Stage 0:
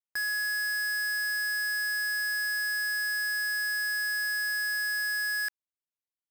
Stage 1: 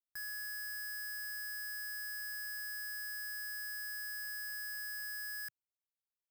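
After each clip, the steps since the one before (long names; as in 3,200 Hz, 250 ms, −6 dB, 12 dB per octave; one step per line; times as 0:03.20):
octave-band graphic EQ 125/250/500/1,000/2,000/4,000/8,000 Hz +4/−11/−10/−7/−8/−9/−5 dB
level −3.5 dB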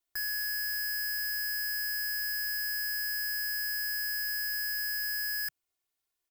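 comb filter 2.8 ms, depth 84%
level +7.5 dB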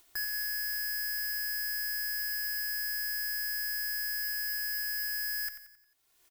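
upward compression, threshold −46 dBFS
on a send: repeating echo 89 ms, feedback 47%, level −10.5 dB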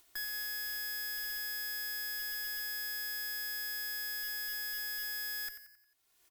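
tube saturation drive 32 dB, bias 0.5
hum removal 61.71 Hz, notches 17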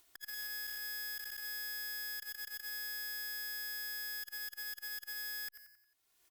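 saturating transformer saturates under 2,200 Hz
level −2.5 dB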